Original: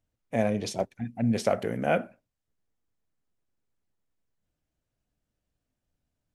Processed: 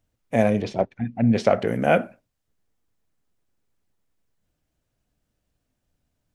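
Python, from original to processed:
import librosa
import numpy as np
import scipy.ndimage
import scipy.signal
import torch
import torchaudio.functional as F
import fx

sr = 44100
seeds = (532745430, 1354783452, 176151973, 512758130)

y = fx.lowpass(x, sr, hz=fx.line((0.61, 2500.0), (1.66, 5100.0)), slope=12, at=(0.61, 1.66), fade=0.02)
y = F.gain(torch.from_numpy(y), 6.5).numpy()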